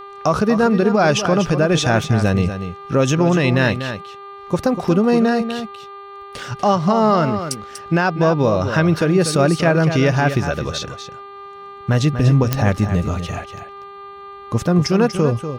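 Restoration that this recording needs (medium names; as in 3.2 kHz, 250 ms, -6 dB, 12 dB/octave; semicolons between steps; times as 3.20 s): de-click; de-hum 398.6 Hz, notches 11; band-stop 1.2 kHz, Q 30; inverse comb 242 ms -9.5 dB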